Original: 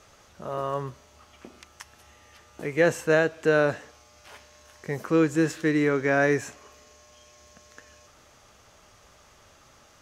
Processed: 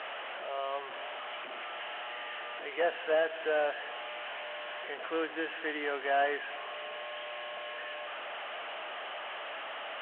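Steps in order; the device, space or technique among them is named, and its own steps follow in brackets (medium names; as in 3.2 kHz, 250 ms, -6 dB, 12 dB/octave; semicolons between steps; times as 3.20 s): digital answering machine (band-pass 320–3200 Hz; one-bit delta coder 16 kbps, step -29.5 dBFS; cabinet simulation 470–3700 Hz, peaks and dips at 690 Hz +8 dB, 1.7 kHz +4 dB, 3 kHz +10 dB); trim -7.5 dB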